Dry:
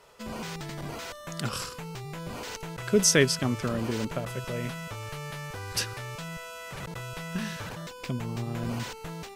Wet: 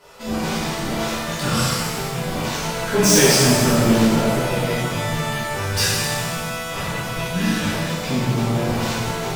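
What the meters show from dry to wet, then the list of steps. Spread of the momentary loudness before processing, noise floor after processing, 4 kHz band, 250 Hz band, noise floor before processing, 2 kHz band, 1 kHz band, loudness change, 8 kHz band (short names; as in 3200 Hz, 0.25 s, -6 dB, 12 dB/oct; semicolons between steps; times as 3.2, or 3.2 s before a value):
15 LU, -28 dBFS, +11.5 dB, +12.5 dB, -45 dBFS, +10.5 dB, +14.0 dB, +11.0 dB, +9.5 dB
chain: hard clip -23.5 dBFS, distortion -7 dB; shimmer reverb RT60 1.6 s, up +7 st, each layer -8 dB, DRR -10.5 dB; gain +2 dB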